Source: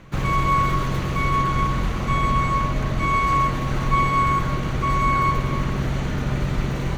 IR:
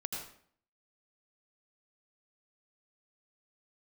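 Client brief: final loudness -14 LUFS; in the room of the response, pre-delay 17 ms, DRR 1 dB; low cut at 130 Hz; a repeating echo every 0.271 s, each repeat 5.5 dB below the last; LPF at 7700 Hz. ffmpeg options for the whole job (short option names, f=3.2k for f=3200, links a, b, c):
-filter_complex "[0:a]highpass=130,lowpass=7.7k,aecho=1:1:271|542|813|1084|1355|1626|1897:0.531|0.281|0.149|0.079|0.0419|0.0222|0.0118,asplit=2[a][b];[1:a]atrim=start_sample=2205,adelay=17[c];[b][c]afir=irnorm=-1:irlink=0,volume=-2dB[d];[a][d]amix=inputs=2:normalize=0,volume=5.5dB"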